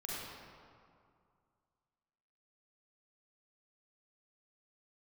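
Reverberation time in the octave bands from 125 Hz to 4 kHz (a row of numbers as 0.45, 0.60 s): 2.5, 2.4, 2.2, 2.3, 1.7, 1.3 s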